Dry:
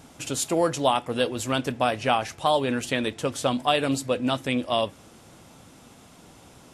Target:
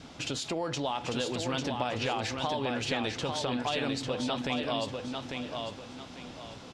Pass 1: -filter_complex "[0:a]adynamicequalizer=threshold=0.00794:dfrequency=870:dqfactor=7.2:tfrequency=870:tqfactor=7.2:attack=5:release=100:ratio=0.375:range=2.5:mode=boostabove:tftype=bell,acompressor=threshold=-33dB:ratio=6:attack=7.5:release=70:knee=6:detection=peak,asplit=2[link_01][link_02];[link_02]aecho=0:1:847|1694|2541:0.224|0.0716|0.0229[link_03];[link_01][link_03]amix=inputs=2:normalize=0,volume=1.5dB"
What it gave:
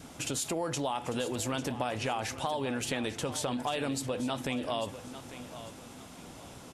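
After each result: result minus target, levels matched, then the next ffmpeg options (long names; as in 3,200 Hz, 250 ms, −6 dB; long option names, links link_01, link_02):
echo-to-direct −8.5 dB; 4,000 Hz band −3.5 dB
-filter_complex "[0:a]adynamicequalizer=threshold=0.00794:dfrequency=870:dqfactor=7.2:tfrequency=870:tqfactor=7.2:attack=5:release=100:ratio=0.375:range=2.5:mode=boostabove:tftype=bell,acompressor=threshold=-33dB:ratio=6:attack=7.5:release=70:knee=6:detection=peak,asplit=2[link_01][link_02];[link_02]aecho=0:1:847|1694|2541|3388:0.596|0.191|0.061|0.0195[link_03];[link_01][link_03]amix=inputs=2:normalize=0,volume=1.5dB"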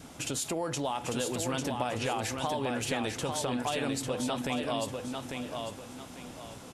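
4,000 Hz band −3.0 dB
-filter_complex "[0:a]adynamicequalizer=threshold=0.00794:dfrequency=870:dqfactor=7.2:tfrequency=870:tqfactor=7.2:attack=5:release=100:ratio=0.375:range=2.5:mode=boostabove:tftype=bell,acompressor=threshold=-33dB:ratio=6:attack=7.5:release=70:knee=6:detection=peak,lowpass=frequency=4500:width_type=q:width=1.5,asplit=2[link_01][link_02];[link_02]aecho=0:1:847|1694|2541|3388:0.596|0.191|0.061|0.0195[link_03];[link_01][link_03]amix=inputs=2:normalize=0,volume=1.5dB"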